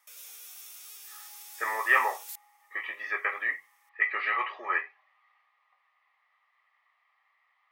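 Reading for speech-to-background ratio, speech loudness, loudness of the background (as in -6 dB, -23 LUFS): 15.0 dB, -29.0 LUFS, -44.0 LUFS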